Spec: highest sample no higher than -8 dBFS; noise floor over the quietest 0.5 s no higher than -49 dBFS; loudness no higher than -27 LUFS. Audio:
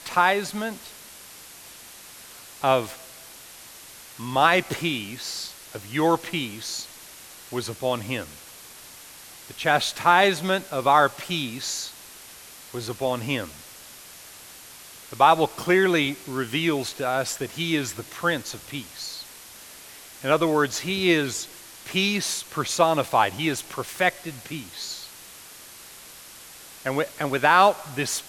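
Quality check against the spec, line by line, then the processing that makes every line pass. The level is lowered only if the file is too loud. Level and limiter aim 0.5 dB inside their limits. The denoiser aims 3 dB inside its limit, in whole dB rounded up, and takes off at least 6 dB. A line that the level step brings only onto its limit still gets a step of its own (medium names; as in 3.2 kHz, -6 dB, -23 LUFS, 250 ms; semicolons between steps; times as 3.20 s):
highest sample -4.5 dBFS: fail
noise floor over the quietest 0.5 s -45 dBFS: fail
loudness -24.0 LUFS: fail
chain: noise reduction 6 dB, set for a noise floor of -45 dBFS; trim -3.5 dB; peak limiter -8.5 dBFS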